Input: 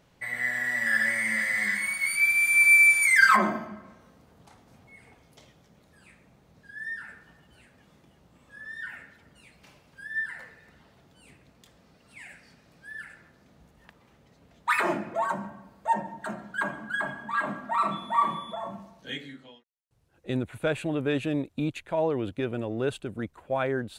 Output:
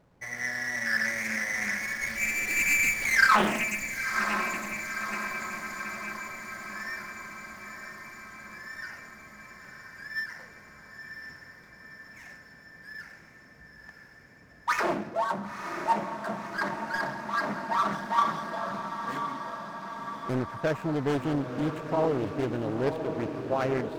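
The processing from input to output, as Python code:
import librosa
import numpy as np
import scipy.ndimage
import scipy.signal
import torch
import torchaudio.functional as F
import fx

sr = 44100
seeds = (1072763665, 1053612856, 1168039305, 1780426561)

y = scipy.signal.medfilt(x, 15)
y = fx.echo_diffused(y, sr, ms=1001, feedback_pct=64, wet_db=-7)
y = fx.doppler_dist(y, sr, depth_ms=0.63)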